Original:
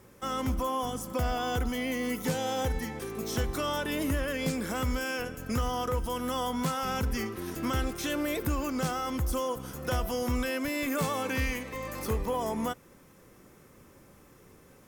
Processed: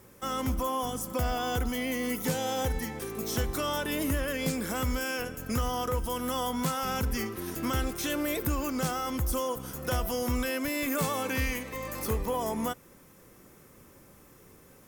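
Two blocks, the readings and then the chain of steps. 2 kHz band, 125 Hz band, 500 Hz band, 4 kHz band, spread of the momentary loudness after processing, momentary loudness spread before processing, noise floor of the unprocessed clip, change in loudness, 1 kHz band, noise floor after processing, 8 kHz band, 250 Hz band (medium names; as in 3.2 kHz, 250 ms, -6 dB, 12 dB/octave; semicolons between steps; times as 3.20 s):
+0.5 dB, 0.0 dB, 0.0 dB, +1.0 dB, 4 LU, 4 LU, -57 dBFS, +0.5 dB, 0.0 dB, -56 dBFS, +3.0 dB, 0.0 dB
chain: treble shelf 8.9 kHz +7.5 dB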